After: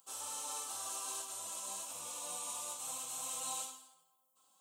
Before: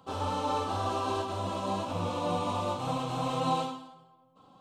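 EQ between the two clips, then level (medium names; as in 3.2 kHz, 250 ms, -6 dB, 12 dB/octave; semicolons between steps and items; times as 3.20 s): differentiator; resonant high shelf 5.7 kHz +10 dB, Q 1.5; +1.0 dB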